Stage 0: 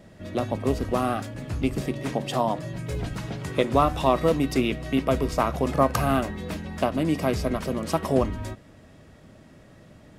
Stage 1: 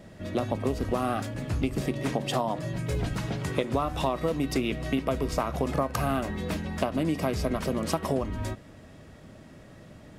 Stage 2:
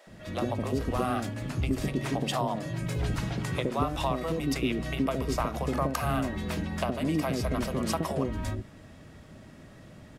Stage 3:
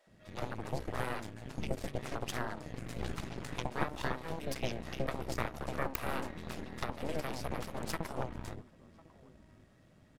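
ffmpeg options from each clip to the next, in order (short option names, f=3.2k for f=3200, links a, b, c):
-af "acompressor=threshold=-24dB:ratio=12,volume=1.5dB"
-filter_complex "[0:a]acrossover=split=510[a][b];[a]adelay=70[c];[c][b]amix=inputs=2:normalize=0"
-filter_complex "[0:a]asplit=2[a][b];[b]adelay=1050,volume=-16dB,highshelf=f=4k:g=-23.6[c];[a][c]amix=inputs=2:normalize=0,aeval=exprs='0.376*(cos(1*acos(clip(val(0)/0.376,-1,1)))-cos(1*PI/2))+0.168*(cos(3*acos(clip(val(0)/0.376,-1,1)))-cos(3*PI/2))+0.168*(cos(4*acos(clip(val(0)/0.376,-1,1)))-cos(4*PI/2))':c=same,volume=-4.5dB"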